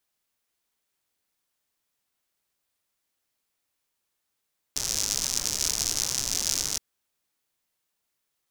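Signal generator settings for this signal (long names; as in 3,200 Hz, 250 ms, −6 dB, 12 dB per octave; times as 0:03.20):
rain-like ticks over hiss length 2.02 s, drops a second 130, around 5,900 Hz, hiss −11 dB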